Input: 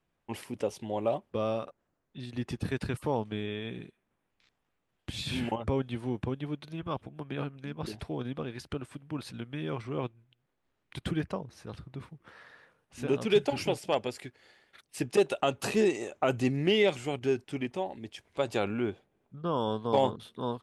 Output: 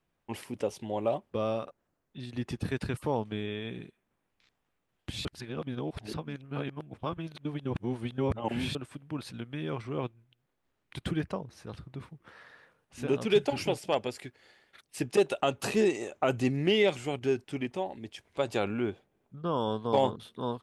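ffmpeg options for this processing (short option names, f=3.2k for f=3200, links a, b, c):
-filter_complex "[0:a]asplit=3[a][b][c];[a]atrim=end=5.252[d];[b]atrim=start=5.248:end=8.752,asetpts=PTS-STARTPTS,areverse[e];[c]atrim=start=8.748[f];[d][e]acrossfade=d=0.004:c1=hsin:c2=hsin[g];[g][f]acrossfade=d=0.004:c1=hsin:c2=hsin"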